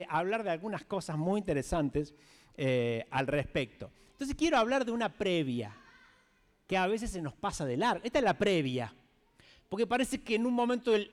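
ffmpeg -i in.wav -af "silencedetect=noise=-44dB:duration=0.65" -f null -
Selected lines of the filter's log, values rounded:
silence_start: 5.72
silence_end: 6.70 | silence_duration: 0.97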